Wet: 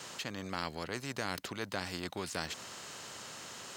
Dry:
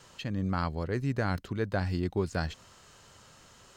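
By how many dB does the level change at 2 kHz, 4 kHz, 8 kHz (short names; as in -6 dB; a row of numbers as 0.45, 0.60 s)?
-1.5, +5.0, +9.5 dB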